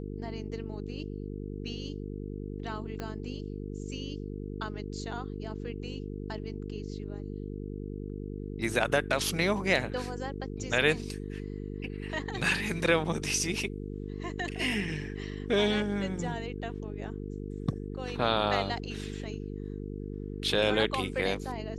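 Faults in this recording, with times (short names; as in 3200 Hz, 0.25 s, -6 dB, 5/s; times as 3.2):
buzz 50 Hz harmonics 9 -38 dBFS
3 pop -22 dBFS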